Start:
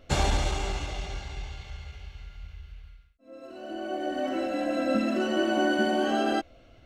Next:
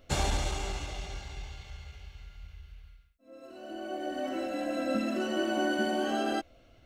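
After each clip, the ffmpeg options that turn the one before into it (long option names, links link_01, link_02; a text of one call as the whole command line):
ffmpeg -i in.wav -af "highshelf=frequency=7800:gain=8.5,volume=-4.5dB" out.wav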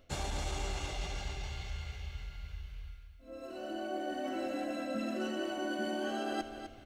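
ffmpeg -i in.wav -af "areverse,acompressor=threshold=-38dB:ratio=5,areverse,aecho=1:1:254|508|762:0.335|0.0971|0.0282,volume=3.5dB" out.wav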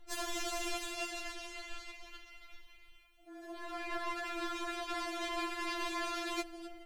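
ffmpeg -i in.wav -af "aeval=exprs='0.0596*(cos(1*acos(clip(val(0)/0.0596,-1,1)))-cos(1*PI/2))+0.0237*(cos(7*acos(clip(val(0)/0.0596,-1,1)))-cos(7*PI/2))':channel_layout=same,afftfilt=real='re*4*eq(mod(b,16),0)':imag='im*4*eq(mod(b,16),0)':win_size=2048:overlap=0.75" out.wav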